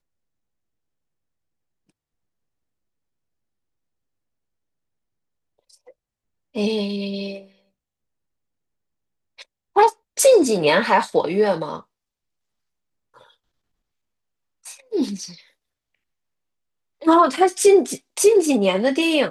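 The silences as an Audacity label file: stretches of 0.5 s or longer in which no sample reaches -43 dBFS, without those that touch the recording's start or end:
5.910000	6.550000	silence
7.470000	9.390000	silence
11.820000	13.160000	silence
13.310000	14.650000	silence
15.420000	17.010000	silence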